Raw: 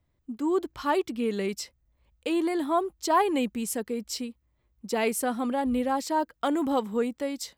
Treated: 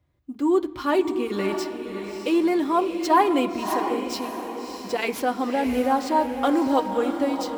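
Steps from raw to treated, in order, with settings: median filter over 5 samples; high-pass 50 Hz; comb of notches 220 Hz; echo that smears into a reverb 618 ms, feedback 45%, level -7 dB; on a send at -13 dB: reverberation, pre-delay 3 ms; on the sum: trim +5 dB

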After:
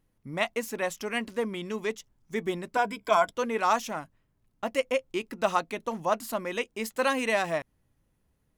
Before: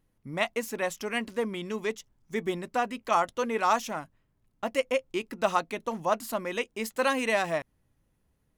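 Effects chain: 2.76–3.31 s: rippled EQ curve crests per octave 1.7, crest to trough 14 dB

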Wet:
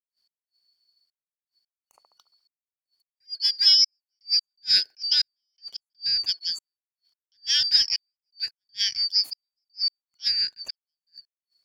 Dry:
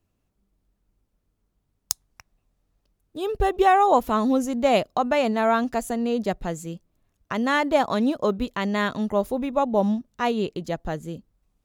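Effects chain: four frequency bands reordered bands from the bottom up 4321; on a send: feedback echo behind a band-pass 69 ms, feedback 43%, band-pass 700 Hz, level -23.5 dB; on the sum: trance gate ".xx..xxxxxxx..." 164 bpm -60 dB; attacks held to a fixed rise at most 450 dB/s

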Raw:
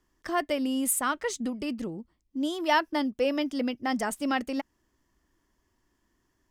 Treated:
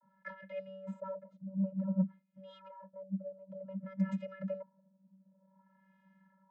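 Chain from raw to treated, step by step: LFO low-pass sine 0.54 Hz 370–2300 Hz; compressor with a negative ratio -37 dBFS, ratio -1; vocoder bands 32, square 191 Hz; saturation -22.5 dBFS, distortion -14 dB

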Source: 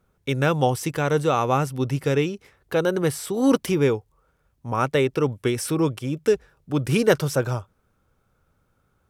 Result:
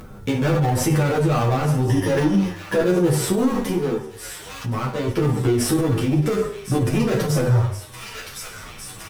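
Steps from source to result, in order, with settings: in parallel at -11 dB: decimation with a swept rate 11×, swing 60% 2.1 Hz; 1.84–2.74 s: on the sum: rippled EQ curve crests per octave 1.2, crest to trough 18 dB; saturation -21 dBFS, distortion -8 dB; bass shelf 430 Hz +5.5 dB; on a send: feedback echo behind a high-pass 1068 ms, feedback 65%, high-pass 1.9 kHz, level -13.5 dB; 3.53–5.08 s: on the sum: compression 2:1, threshold -39 dBFS, peak gain reduction 11 dB; plate-style reverb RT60 0.59 s, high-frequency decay 0.75×, DRR -1 dB; upward compressor, threshold -31 dBFS; loudness maximiser +16 dB; endless flanger 9.4 ms -2.3 Hz; trim -8 dB

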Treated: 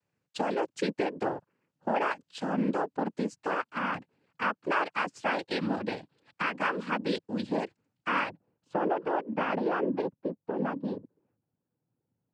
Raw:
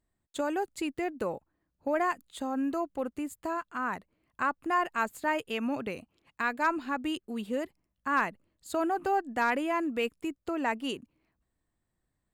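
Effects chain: Bessel low-pass 5.9 kHz, order 2, from 8.28 s 1.1 kHz, from 10.00 s 550 Hz; compression 2.5:1, threshold -30 dBFS, peak gain reduction 6 dB; noise-vocoded speech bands 8; trim +4 dB

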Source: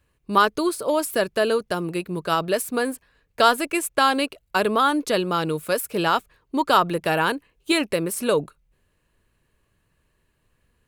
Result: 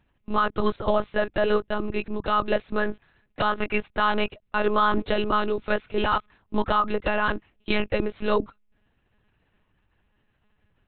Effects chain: dynamic bell 1.2 kHz, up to +7 dB, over -34 dBFS, Q 3.9; peak limiter -12.5 dBFS, peak gain reduction 12.5 dB; monotone LPC vocoder at 8 kHz 210 Hz

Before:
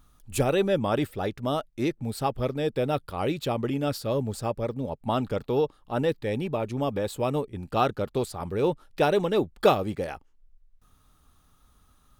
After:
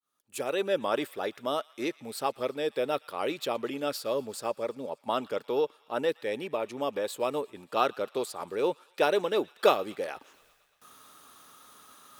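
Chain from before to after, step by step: fade-in on the opening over 0.79 s; high-pass 410 Hz 12 dB/octave; peaking EQ 770 Hz -4 dB 0.33 oct; reverse; upward compressor, threshold -41 dBFS; reverse; feedback echo behind a high-pass 117 ms, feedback 72%, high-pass 1.5 kHz, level -22 dB

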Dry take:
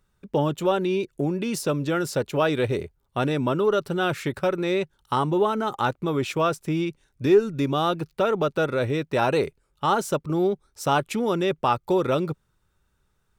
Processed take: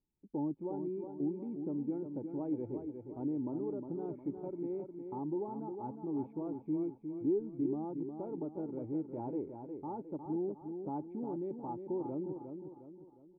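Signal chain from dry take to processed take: cascade formant filter u; feedback delay 358 ms, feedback 43%, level -7 dB; trim -6 dB

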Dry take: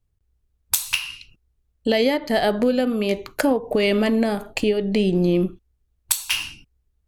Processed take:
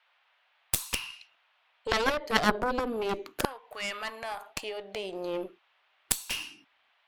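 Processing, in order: LFO high-pass saw down 0.29 Hz 260–1500 Hz; band noise 640–3300 Hz -60 dBFS; Chebyshev shaper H 3 -7 dB, 4 -23 dB, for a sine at -2 dBFS

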